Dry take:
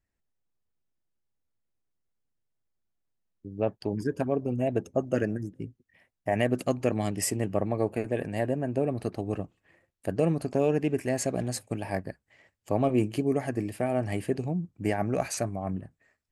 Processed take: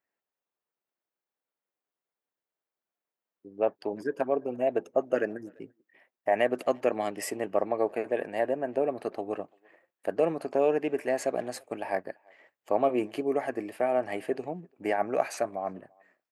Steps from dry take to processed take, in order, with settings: HPF 490 Hz 12 dB/oct; bell 7900 Hz -13.5 dB 2.4 oct; speakerphone echo 0.34 s, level -29 dB; gain +5 dB

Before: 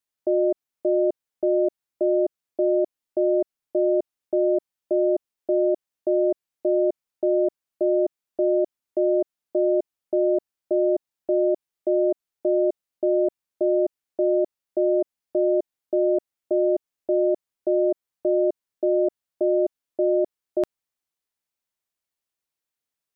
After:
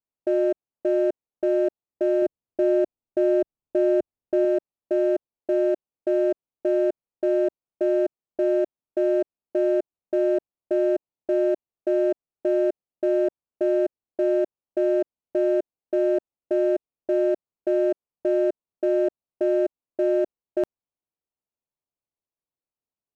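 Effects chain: Wiener smoothing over 25 samples; 2.22–4.45 low shelf 180 Hz +8.5 dB

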